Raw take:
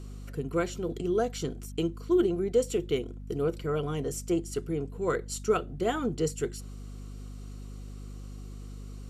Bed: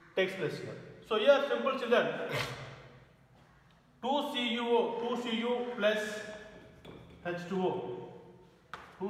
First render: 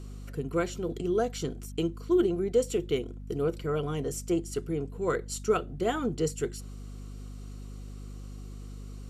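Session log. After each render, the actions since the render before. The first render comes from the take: no audible change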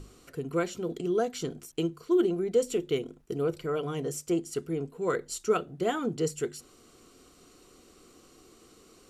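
hum notches 50/100/150/200/250 Hz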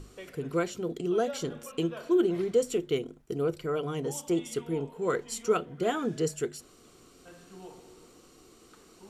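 add bed -15.5 dB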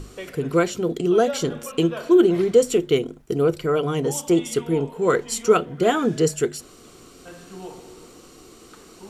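trim +9.5 dB

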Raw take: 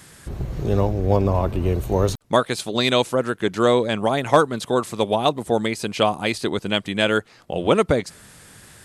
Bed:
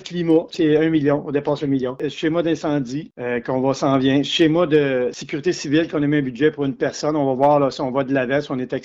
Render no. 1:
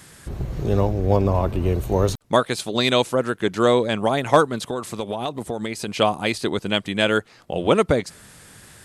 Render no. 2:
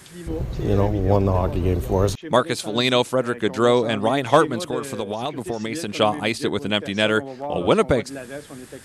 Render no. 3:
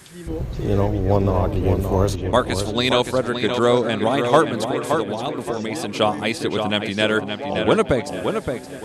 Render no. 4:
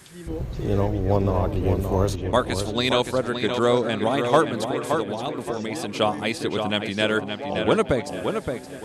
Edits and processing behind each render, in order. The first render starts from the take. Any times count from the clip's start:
4.64–5.88 s: compression, threshold -22 dBFS
add bed -15 dB
filtered feedback delay 571 ms, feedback 30%, low-pass 4.6 kHz, level -6 dB
trim -3 dB

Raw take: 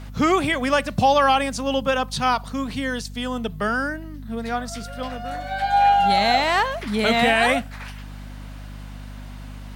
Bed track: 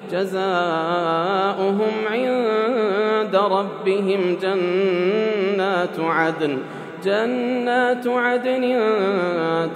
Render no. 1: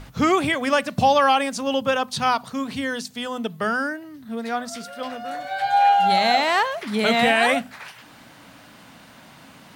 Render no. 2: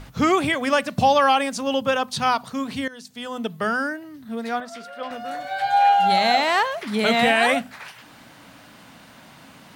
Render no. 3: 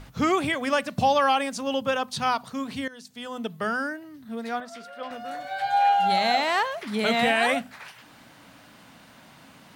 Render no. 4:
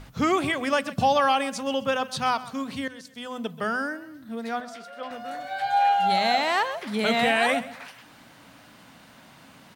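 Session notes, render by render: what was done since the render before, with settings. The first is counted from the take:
hum notches 50/100/150/200/250 Hz
2.88–3.45 s: fade in, from -18 dB; 4.60–5.11 s: tone controls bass -11 dB, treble -11 dB
trim -4 dB
feedback delay 131 ms, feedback 34%, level -17 dB

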